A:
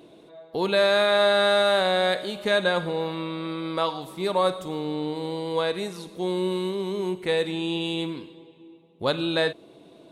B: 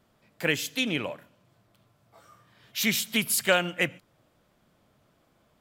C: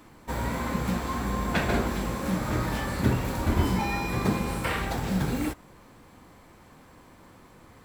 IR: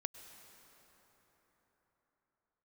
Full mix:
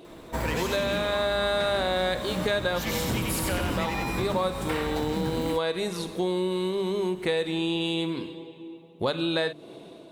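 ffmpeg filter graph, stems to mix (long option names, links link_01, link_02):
-filter_complex "[0:a]bandreject=frequency=50:width_type=h:width=6,bandreject=frequency=100:width_type=h:width=6,bandreject=frequency=150:width_type=h:width=6,bandreject=frequency=200:width_type=h:width=6,bandreject=frequency=250:width_type=h:width=6,bandreject=frequency=300:width_type=h:width=6,dynaudnorm=framelen=130:gausssize=5:maxgain=4.5dB,volume=2.5dB[link_01];[1:a]asoftclip=type=tanh:threshold=-21dB,volume=0dB,asplit=3[link_02][link_03][link_04];[link_03]volume=-3dB[link_05];[2:a]asoftclip=type=hard:threshold=-21.5dB,adelay=50,volume=2.5dB[link_06];[link_04]apad=whole_len=446091[link_07];[link_01][link_07]sidechaincompress=threshold=-31dB:ratio=8:attack=16:release=1270[link_08];[link_05]aecho=0:1:92|184|276|368|460|552|644:1|0.51|0.26|0.133|0.0677|0.0345|0.0176[link_09];[link_08][link_02][link_06][link_09]amix=inputs=4:normalize=0,acompressor=threshold=-25dB:ratio=4"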